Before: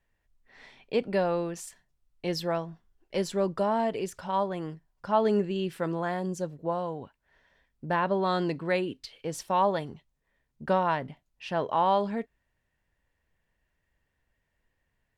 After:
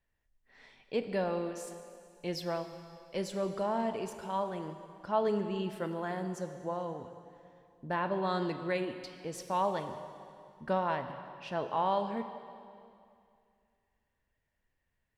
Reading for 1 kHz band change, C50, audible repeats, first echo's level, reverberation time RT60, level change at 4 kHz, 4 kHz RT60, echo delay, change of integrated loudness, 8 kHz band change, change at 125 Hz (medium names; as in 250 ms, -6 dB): -5.5 dB, 9.0 dB, no echo, no echo, 2.4 s, -5.5 dB, 2.2 s, no echo, -6.0 dB, -5.5 dB, -5.5 dB